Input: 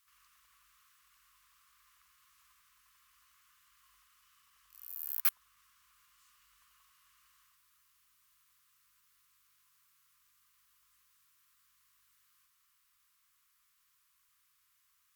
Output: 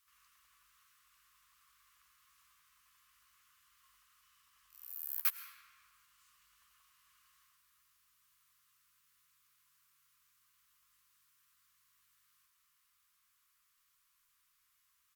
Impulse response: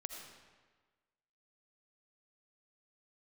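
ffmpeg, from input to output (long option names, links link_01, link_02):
-filter_complex "[0:a]asplit=2[link_01][link_02];[link_02]adelay=13,volume=-9.5dB[link_03];[link_01][link_03]amix=inputs=2:normalize=0,asplit=2[link_04][link_05];[1:a]atrim=start_sample=2205,asetrate=31752,aresample=44100[link_06];[link_05][link_06]afir=irnorm=-1:irlink=0,volume=0.5dB[link_07];[link_04][link_07]amix=inputs=2:normalize=0,volume=-7.5dB"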